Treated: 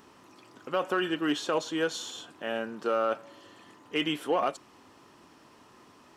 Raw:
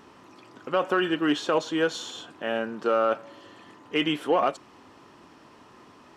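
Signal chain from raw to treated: treble shelf 6.6 kHz +10 dB; trim -4.5 dB

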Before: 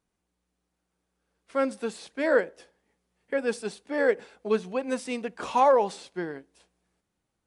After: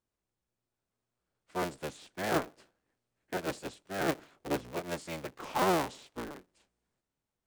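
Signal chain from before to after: cycle switcher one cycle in 3, inverted; formant shift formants -2 st; trim -8 dB

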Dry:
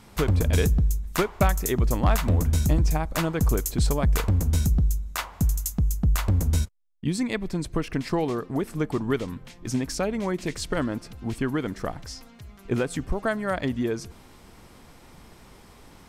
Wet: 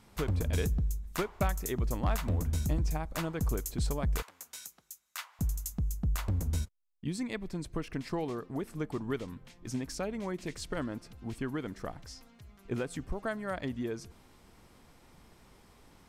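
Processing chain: 4.22–5.39 s: high-pass 1.3 kHz 12 dB/octave; trim -9 dB

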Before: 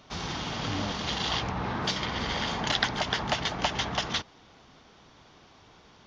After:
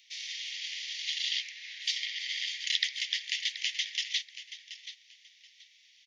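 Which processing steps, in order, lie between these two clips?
steep high-pass 1.9 kHz 96 dB/octave; feedback delay 729 ms, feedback 22%, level -13 dB

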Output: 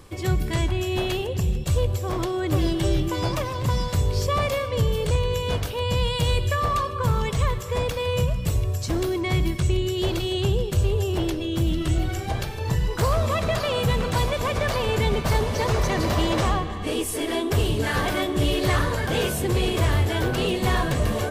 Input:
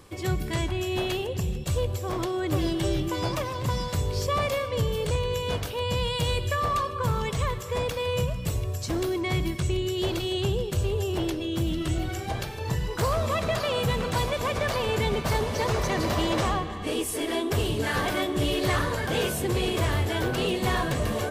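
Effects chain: bass shelf 79 Hz +7.5 dB; trim +2 dB

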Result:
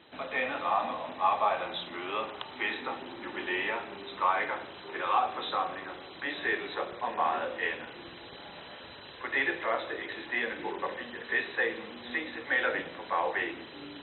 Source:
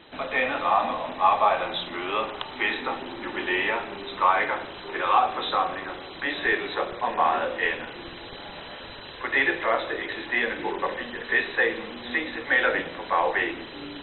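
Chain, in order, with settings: high-pass 72 Hz; trim -6.5 dB

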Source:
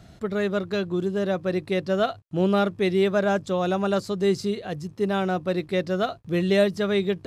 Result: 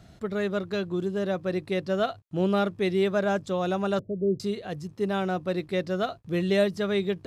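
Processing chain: 3.99–4.40 s: Chebyshev low-pass 660 Hz, order 6; trim -3 dB

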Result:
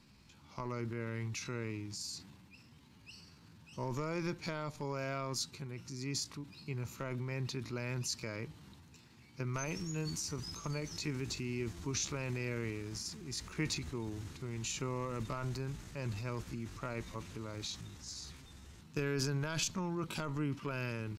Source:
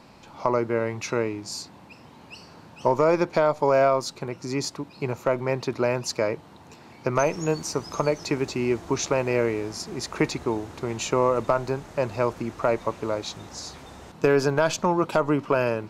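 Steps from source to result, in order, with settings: transient shaper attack 0 dB, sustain +6 dB; tempo 0.75×; amplifier tone stack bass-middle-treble 6-0-2; trim +6.5 dB

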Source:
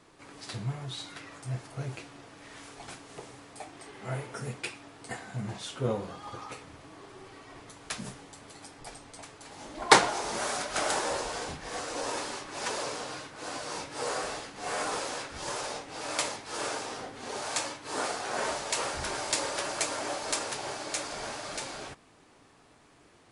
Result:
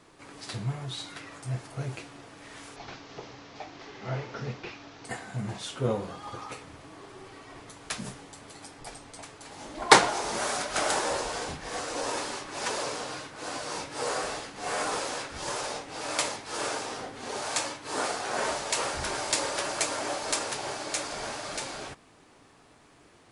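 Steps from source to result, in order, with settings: 2.76–5.05 s: one-bit delta coder 32 kbps, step -47.5 dBFS; trim +2 dB

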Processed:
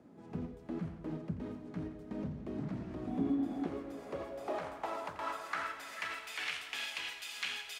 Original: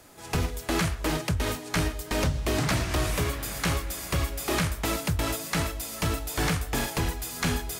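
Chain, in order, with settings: bass shelf 230 Hz -8 dB; feedback delay 86 ms, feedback 53%, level -15.5 dB; peak limiter -21 dBFS, peak gain reduction 4.5 dB; 3.07–3.67 s: small resonant body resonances 260/740/3400 Hz, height 16 dB; compression 1.5:1, threshold -50 dBFS, peak gain reduction 9.5 dB; band-pass sweep 210 Hz -> 2.8 kHz, 3.02–6.58 s; echo that smears into a reverb 564 ms, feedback 46%, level -14.5 dB; trim +9 dB

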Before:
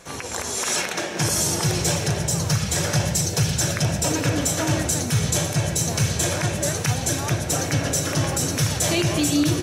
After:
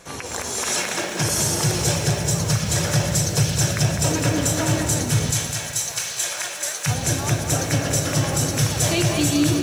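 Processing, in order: 5.31–6.86 s: Bessel high-pass 1.2 kHz, order 2; bit-crushed delay 204 ms, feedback 55%, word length 7-bit, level -7 dB

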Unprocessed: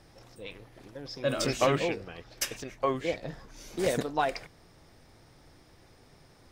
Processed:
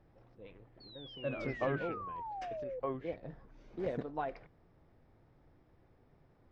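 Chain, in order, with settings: painted sound fall, 0.80–2.80 s, 490–4500 Hz -32 dBFS; tape spacing loss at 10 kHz 43 dB; trim -6.5 dB

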